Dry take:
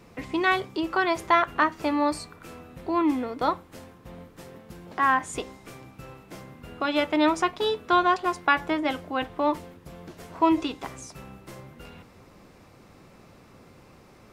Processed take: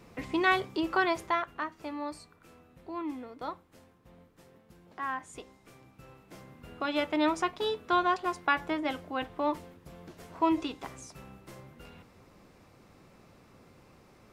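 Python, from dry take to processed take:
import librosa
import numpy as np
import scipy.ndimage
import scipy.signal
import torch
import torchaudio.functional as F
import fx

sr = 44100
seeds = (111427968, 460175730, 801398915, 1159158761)

y = fx.gain(x, sr, db=fx.line((1.03, -2.5), (1.54, -13.0), (5.46, -13.0), (6.66, -5.5)))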